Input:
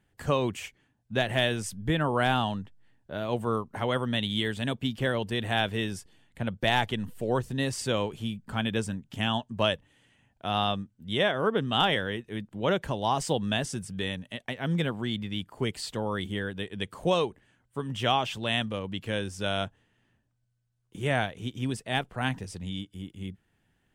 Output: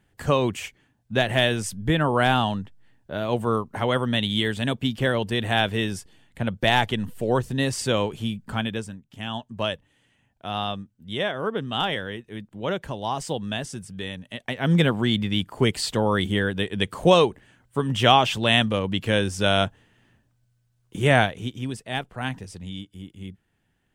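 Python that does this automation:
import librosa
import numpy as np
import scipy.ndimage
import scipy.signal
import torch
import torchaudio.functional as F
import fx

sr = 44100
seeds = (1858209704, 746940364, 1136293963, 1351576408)

y = fx.gain(x, sr, db=fx.line((8.51, 5.0), (9.07, -8.0), (9.43, -1.0), (14.13, -1.0), (14.76, 9.0), (21.21, 9.0), (21.67, 0.0)))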